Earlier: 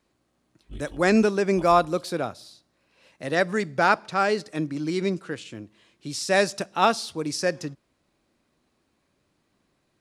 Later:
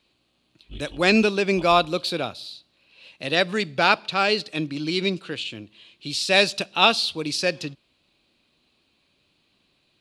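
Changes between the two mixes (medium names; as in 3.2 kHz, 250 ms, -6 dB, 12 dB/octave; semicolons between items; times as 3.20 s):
background: add treble shelf 5.5 kHz -12 dB; master: add high-order bell 3.3 kHz +13 dB 1.1 oct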